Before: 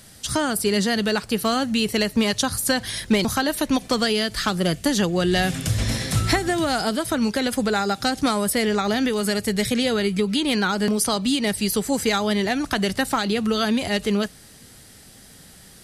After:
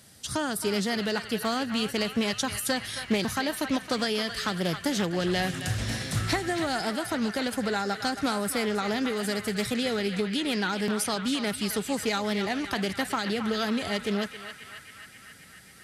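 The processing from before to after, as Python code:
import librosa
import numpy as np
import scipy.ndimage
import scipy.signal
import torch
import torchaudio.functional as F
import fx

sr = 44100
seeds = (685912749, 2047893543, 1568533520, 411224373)

p1 = scipy.signal.sosfilt(scipy.signal.butter(2, 64.0, 'highpass', fs=sr, output='sos'), x)
p2 = p1 + fx.echo_banded(p1, sr, ms=269, feedback_pct=78, hz=1900.0, wet_db=-7.0, dry=0)
p3 = fx.doppler_dist(p2, sr, depth_ms=0.21)
y = p3 * librosa.db_to_amplitude(-6.5)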